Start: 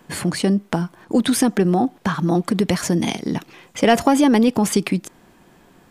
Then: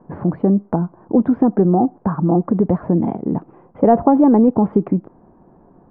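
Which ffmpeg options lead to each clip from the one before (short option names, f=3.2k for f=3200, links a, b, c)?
-af "lowpass=f=1k:w=0.5412,lowpass=f=1k:w=1.3066,volume=3dB"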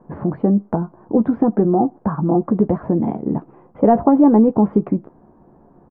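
-filter_complex "[0:a]asplit=2[a][b];[b]adelay=14,volume=-9dB[c];[a][c]amix=inputs=2:normalize=0,volume=-1dB"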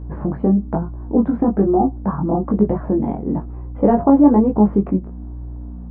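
-af "aeval=exprs='val(0)+0.0355*(sin(2*PI*60*n/s)+sin(2*PI*2*60*n/s)/2+sin(2*PI*3*60*n/s)/3+sin(2*PI*4*60*n/s)/4+sin(2*PI*5*60*n/s)/5)':c=same,flanger=delay=19:depth=2.6:speed=1.1,volume=2.5dB"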